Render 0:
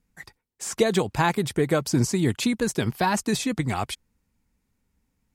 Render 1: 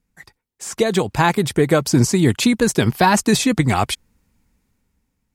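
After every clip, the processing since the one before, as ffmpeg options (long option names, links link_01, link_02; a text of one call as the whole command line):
ffmpeg -i in.wav -af "dynaudnorm=framelen=210:gausssize=9:maxgain=11.5dB" out.wav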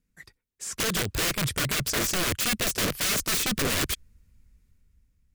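ffmpeg -i in.wav -af "asubboost=boost=5.5:cutoff=110,aeval=exprs='(mod(5.96*val(0)+1,2)-1)/5.96':channel_layout=same,equalizer=frequency=840:width_type=o:width=0.62:gain=-10.5,volume=-4.5dB" out.wav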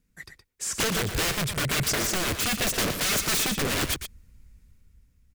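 ffmpeg -i in.wav -af "aeval=exprs='0.158*(cos(1*acos(clip(val(0)/0.158,-1,1)))-cos(1*PI/2))+0.0251*(cos(5*acos(clip(val(0)/0.158,-1,1)))-cos(5*PI/2))':channel_layout=same,alimiter=limit=-19.5dB:level=0:latency=1:release=447,aecho=1:1:118:0.376" out.wav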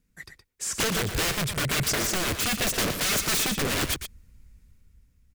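ffmpeg -i in.wav -af anull out.wav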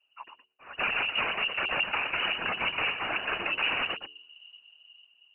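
ffmpeg -i in.wav -af "lowpass=frequency=2500:width_type=q:width=0.5098,lowpass=frequency=2500:width_type=q:width=0.6013,lowpass=frequency=2500:width_type=q:width=0.9,lowpass=frequency=2500:width_type=q:width=2.563,afreqshift=-2900,afftfilt=real='hypot(re,im)*cos(2*PI*random(0))':imag='hypot(re,im)*sin(2*PI*random(1))':win_size=512:overlap=0.75,bandreject=frequency=74.6:width_type=h:width=4,bandreject=frequency=149.2:width_type=h:width=4,bandreject=frequency=223.8:width_type=h:width=4,bandreject=frequency=298.4:width_type=h:width=4,bandreject=frequency=373:width_type=h:width=4,bandreject=frequency=447.6:width_type=h:width=4,volume=5dB" out.wav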